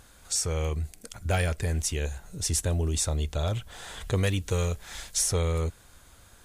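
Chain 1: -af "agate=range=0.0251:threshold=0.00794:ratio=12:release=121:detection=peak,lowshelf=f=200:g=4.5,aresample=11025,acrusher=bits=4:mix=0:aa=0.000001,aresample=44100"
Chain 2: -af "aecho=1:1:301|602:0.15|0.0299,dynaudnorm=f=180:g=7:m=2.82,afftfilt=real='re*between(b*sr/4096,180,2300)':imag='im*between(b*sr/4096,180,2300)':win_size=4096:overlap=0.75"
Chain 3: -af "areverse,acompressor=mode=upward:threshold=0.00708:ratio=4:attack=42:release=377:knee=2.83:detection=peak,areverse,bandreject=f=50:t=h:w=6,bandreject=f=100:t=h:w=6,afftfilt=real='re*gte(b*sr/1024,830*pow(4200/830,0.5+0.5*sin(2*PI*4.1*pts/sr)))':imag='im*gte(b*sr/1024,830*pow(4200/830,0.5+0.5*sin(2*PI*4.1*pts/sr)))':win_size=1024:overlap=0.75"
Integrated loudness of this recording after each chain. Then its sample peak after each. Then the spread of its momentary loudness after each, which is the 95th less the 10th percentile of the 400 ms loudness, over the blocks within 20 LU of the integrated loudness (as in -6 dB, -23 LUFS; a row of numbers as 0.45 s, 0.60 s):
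-27.0 LUFS, -27.0 LUFS, -32.0 LUFS; -13.0 dBFS, -8.0 dBFS, -9.0 dBFS; 11 LU, 16 LU, 20 LU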